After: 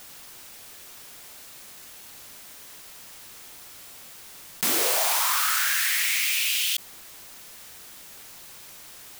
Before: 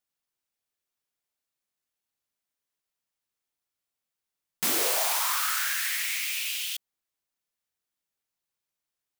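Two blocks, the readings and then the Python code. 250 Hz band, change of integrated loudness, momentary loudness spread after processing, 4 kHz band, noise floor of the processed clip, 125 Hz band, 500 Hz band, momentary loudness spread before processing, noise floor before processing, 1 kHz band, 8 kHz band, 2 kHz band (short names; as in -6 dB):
+2.5 dB, +4.0 dB, 4 LU, +5.0 dB, -45 dBFS, n/a, +2.5 dB, 7 LU, under -85 dBFS, +3.5 dB, +4.0 dB, +5.0 dB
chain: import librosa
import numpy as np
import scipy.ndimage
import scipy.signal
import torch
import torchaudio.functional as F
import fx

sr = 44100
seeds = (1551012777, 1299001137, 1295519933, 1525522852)

y = fx.env_flatten(x, sr, amount_pct=70)
y = y * 10.0 ** (2.0 / 20.0)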